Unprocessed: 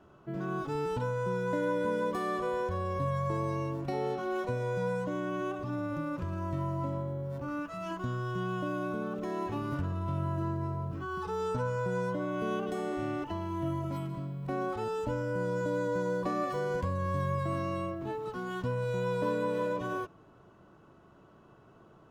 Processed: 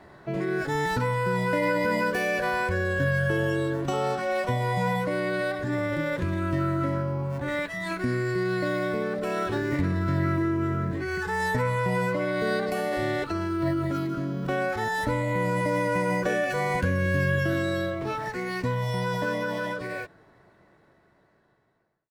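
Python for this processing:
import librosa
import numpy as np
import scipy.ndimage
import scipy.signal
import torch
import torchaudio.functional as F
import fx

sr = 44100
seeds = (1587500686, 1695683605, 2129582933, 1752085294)

y = fx.fade_out_tail(x, sr, length_s=4.1)
y = fx.dynamic_eq(y, sr, hz=670.0, q=1.3, threshold_db=-47.0, ratio=4.0, max_db=-5)
y = fx.formant_shift(y, sr, semitones=6)
y = F.gain(torch.from_numpy(y), 8.0).numpy()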